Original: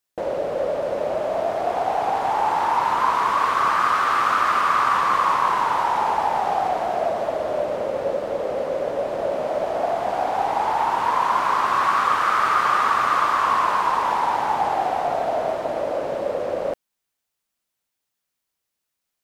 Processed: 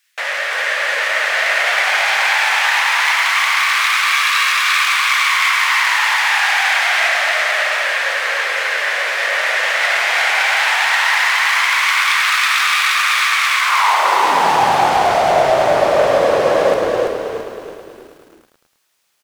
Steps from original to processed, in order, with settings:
stylus tracing distortion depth 0.5 ms
0:04.04–0:04.50: comb filter 1.8 ms, depth 51%
mid-hump overdrive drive 22 dB, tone 6,700 Hz, clips at −6 dBFS
high-pass filter sweep 1,900 Hz → 120 Hz, 0:13.58–0:14.64
convolution reverb, pre-delay 3 ms, DRR 5.5 dB
speech leveller within 5 dB 0.5 s
low-shelf EQ 330 Hz −2.5 dB
echo with shifted repeats 334 ms, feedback 42%, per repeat −44 Hz, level −4 dB
feedback echo at a low word length 107 ms, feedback 80%, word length 7 bits, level −11.5 dB
level −2.5 dB

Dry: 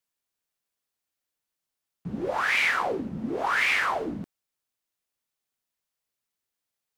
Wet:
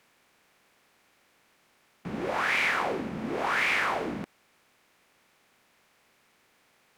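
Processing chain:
compressor on every frequency bin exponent 0.6
level −5 dB

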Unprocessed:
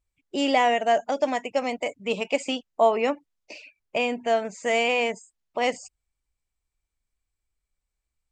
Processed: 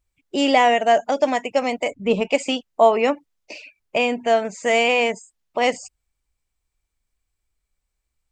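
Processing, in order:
0:01.91–0:02.31: spectral tilt −2.5 dB per octave
level +5 dB

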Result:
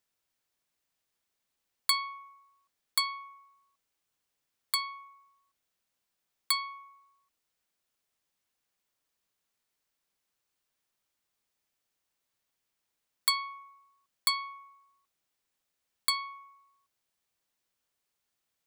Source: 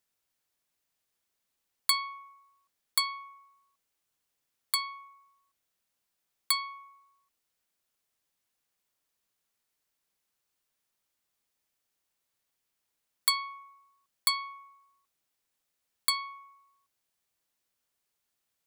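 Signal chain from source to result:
parametric band 13,000 Hz −3.5 dB 1.1 octaves

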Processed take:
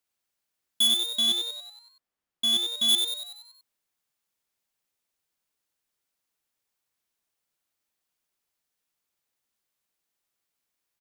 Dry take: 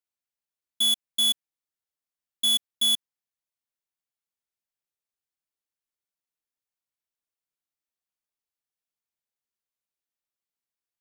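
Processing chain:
0:00.87–0:02.89: high-shelf EQ 3,000 Hz −11 dB
soft clipping −27.5 dBFS, distortion −13 dB
echo with shifted repeats 94 ms, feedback 53%, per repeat +120 Hz, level −5.5 dB
level +8 dB

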